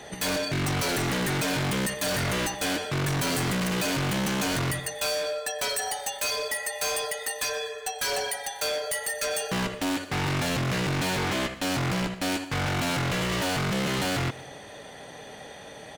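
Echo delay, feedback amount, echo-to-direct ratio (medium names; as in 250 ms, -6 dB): 122 ms, 43%, -20.0 dB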